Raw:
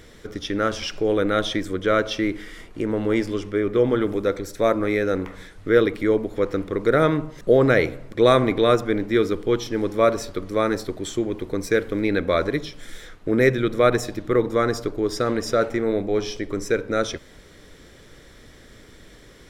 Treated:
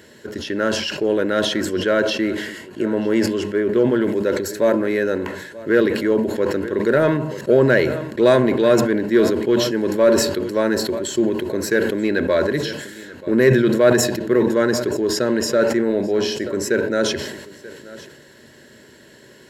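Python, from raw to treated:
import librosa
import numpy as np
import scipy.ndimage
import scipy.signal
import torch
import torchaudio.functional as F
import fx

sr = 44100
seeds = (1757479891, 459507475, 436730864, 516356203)

p1 = scipy.signal.sosfilt(scipy.signal.butter(2, 110.0, 'highpass', fs=sr, output='sos'), x)
p2 = fx.notch(p1, sr, hz=690.0, q=12.0)
p3 = fx.notch_comb(p2, sr, f0_hz=1200.0)
p4 = p3 + 10.0 ** (-19.5 / 20.0) * np.pad(p3, (int(933 * sr / 1000.0), 0))[:len(p3)]
p5 = np.clip(p4, -10.0 ** (-16.0 / 20.0), 10.0 ** (-16.0 / 20.0))
p6 = p4 + (p5 * 10.0 ** (-8.5 / 20.0))
p7 = fx.ripple_eq(p6, sr, per_octave=1.4, db=7)
y = fx.sustainer(p7, sr, db_per_s=50.0)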